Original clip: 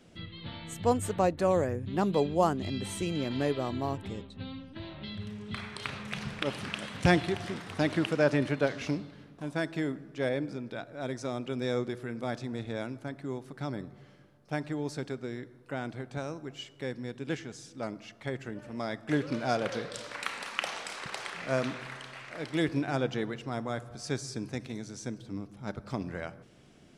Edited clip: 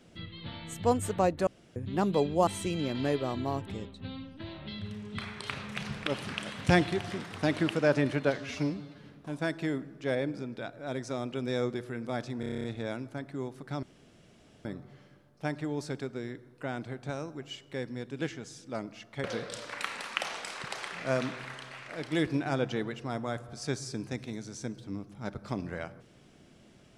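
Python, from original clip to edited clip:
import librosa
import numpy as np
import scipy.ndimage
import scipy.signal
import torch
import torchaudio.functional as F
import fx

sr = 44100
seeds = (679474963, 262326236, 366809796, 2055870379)

y = fx.edit(x, sr, fx.room_tone_fill(start_s=1.47, length_s=0.29),
    fx.cut(start_s=2.47, length_s=0.36),
    fx.stretch_span(start_s=8.74, length_s=0.44, factor=1.5),
    fx.stutter(start_s=12.54, slice_s=0.03, count=9),
    fx.insert_room_tone(at_s=13.73, length_s=0.82),
    fx.cut(start_s=18.32, length_s=1.34), tone=tone)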